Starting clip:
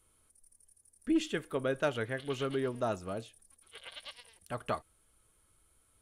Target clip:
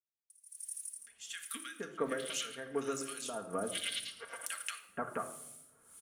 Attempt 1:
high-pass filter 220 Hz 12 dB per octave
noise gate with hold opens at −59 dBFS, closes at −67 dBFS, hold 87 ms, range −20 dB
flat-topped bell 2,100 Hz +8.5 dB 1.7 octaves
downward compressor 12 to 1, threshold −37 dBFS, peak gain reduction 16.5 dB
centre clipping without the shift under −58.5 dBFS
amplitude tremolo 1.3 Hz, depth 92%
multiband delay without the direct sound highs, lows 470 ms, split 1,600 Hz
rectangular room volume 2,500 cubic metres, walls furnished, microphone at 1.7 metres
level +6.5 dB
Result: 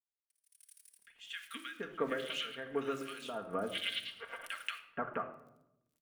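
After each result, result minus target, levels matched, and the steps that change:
8,000 Hz band −15.5 dB; centre clipping without the shift: distortion +7 dB
add after downward compressor: high shelf with overshoot 4,400 Hz +13 dB, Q 1.5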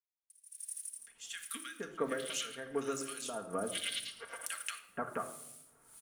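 centre clipping without the shift: distortion +8 dB
change: centre clipping without the shift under −64.5 dBFS

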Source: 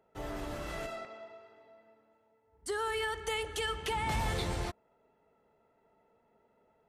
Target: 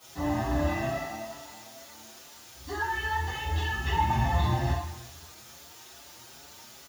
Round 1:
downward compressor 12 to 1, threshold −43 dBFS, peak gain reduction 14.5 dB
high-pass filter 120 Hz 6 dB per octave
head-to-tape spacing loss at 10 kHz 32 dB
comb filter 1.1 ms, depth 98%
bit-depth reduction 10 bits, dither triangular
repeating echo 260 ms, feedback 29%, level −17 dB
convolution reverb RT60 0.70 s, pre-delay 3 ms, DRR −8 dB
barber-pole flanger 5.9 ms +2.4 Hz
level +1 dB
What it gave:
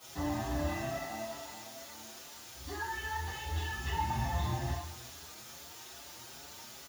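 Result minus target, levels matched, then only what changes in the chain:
downward compressor: peak gain reduction +8 dB
change: downward compressor 12 to 1, threshold −34.5 dBFS, peak gain reduction 7 dB

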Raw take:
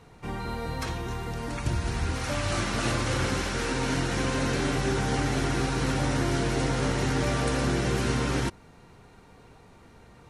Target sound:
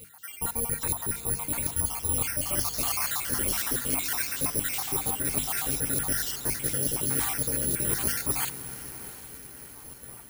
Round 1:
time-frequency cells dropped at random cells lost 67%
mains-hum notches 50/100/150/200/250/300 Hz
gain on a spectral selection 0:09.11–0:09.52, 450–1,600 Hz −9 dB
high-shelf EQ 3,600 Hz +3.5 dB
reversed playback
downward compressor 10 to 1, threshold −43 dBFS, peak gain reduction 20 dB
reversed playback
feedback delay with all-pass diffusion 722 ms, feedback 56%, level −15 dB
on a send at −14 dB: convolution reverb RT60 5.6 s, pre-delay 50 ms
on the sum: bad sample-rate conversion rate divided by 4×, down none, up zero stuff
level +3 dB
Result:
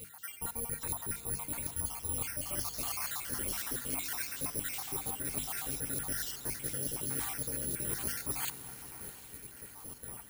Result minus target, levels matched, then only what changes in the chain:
downward compressor: peak gain reduction +8.5 dB
change: downward compressor 10 to 1, threshold −33.5 dBFS, peak gain reduction 11 dB

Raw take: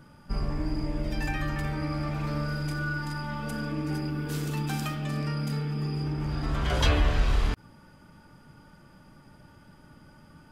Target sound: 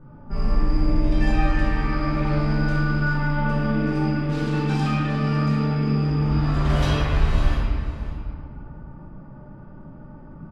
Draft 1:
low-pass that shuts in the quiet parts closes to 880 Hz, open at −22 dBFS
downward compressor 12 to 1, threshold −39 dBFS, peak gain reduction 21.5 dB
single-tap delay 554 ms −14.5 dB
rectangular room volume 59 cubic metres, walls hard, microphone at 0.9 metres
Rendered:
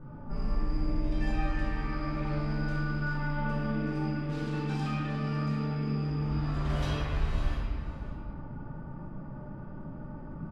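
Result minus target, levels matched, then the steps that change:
downward compressor: peak gain reduction +10 dB
change: downward compressor 12 to 1, threshold −28 dBFS, peak gain reduction 11.5 dB

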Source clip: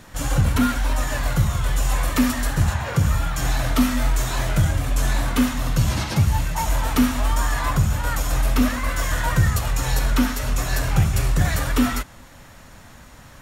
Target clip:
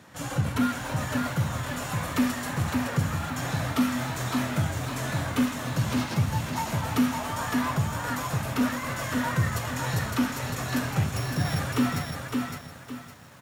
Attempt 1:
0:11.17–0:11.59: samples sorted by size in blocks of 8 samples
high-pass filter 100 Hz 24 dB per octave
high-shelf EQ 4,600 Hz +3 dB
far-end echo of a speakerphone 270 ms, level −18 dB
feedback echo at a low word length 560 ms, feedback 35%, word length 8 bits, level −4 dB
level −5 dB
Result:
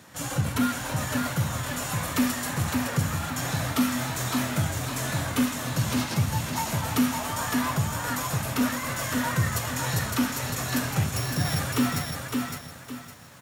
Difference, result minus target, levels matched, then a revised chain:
8,000 Hz band +5.0 dB
0:11.17–0:11.59: samples sorted by size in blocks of 8 samples
high-pass filter 100 Hz 24 dB per octave
high-shelf EQ 4,600 Hz −5 dB
far-end echo of a speakerphone 270 ms, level −18 dB
feedback echo at a low word length 560 ms, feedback 35%, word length 8 bits, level −4 dB
level −5 dB

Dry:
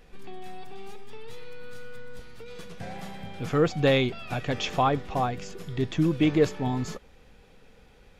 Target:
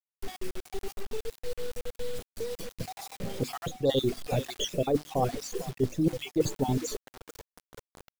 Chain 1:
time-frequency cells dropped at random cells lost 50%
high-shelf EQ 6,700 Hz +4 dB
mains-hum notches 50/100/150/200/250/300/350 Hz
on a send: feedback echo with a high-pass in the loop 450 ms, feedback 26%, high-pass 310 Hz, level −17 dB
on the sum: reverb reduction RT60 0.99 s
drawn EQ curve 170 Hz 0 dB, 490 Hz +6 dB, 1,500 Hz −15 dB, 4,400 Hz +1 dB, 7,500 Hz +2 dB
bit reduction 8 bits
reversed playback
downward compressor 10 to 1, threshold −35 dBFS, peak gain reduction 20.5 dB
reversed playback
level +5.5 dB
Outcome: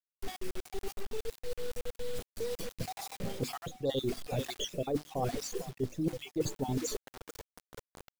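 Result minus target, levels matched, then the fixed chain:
downward compressor: peak gain reduction +7 dB
time-frequency cells dropped at random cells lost 50%
high-shelf EQ 6,700 Hz +4 dB
mains-hum notches 50/100/150/200/250/300/350 Hz
on a send: feedback echo with a high-pass in the loop 450 ms, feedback 26%, high-pass 310 Hz, level −17 dB
on the sum: reverb reduction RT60 0.99 s
drawn EQ curve 170 Hz 0 dB, 490 Hz +6 dB, 1,500 Hz −15 dB, 4,400 Hz +1 dB, 7,500 Hz +2 dB
bit reduction 8 bits
reversed playback
downward compressor 10 to 1, threshold −27.5 dBFS, peak gain reduction 14 dB
reversed playback
level +5.5 dB

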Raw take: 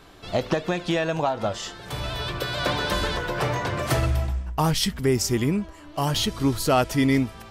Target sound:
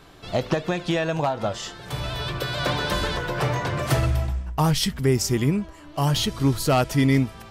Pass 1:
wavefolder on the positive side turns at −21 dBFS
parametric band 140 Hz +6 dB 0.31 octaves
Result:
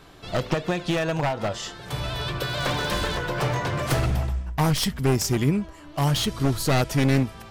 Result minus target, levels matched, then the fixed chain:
wavefolder on the positive side: distortion +17 dB
wavefolder on the positive side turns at −14 dBFS
parametric band 140 Hz +6 dB 0.31 octaves

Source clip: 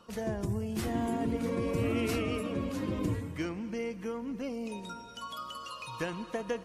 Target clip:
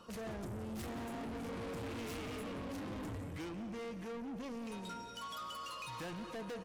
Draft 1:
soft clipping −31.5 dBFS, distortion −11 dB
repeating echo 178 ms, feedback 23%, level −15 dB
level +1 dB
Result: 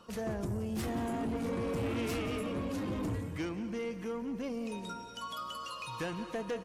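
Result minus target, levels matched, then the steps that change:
soft clipping: distortion −7 dB
change: soft clipping −42.5 dBFS, distortion −4 dB

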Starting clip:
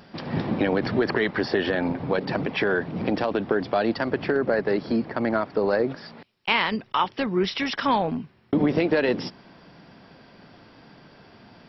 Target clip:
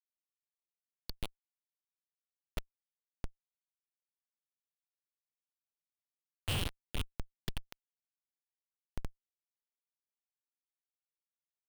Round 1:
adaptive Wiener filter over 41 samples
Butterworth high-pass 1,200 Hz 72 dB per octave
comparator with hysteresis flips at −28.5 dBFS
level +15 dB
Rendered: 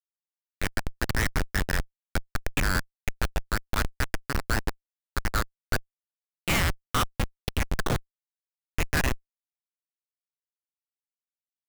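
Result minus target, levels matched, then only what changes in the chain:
1,000 Hz band +9.0 dB
change: Butterworth high-pass 2,900 Hz 72 dB per octave

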